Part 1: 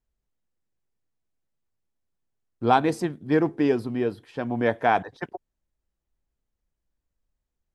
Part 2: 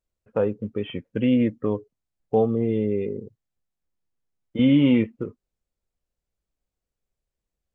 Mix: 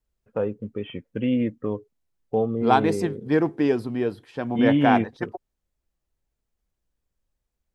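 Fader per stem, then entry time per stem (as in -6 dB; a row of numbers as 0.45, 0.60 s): +0.5, -3.0 dB; 0.00, 0.00 s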